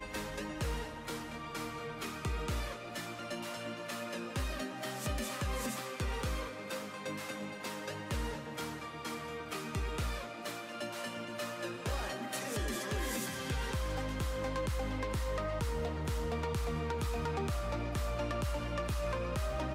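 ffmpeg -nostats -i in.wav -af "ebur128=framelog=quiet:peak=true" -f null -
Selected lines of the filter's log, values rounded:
Integrated loudness:
  I:         -38.0 LUFS
  Threshold: -48.0 LUFS
Loudness range:
  LRA:         3.8 LU
  Threshold: -58.0 LUFS
  LRA low:   -40.0 LUFS
  LRA high:  -36.2 LUFS
True peak:
  Peak:      -26.2 dBFS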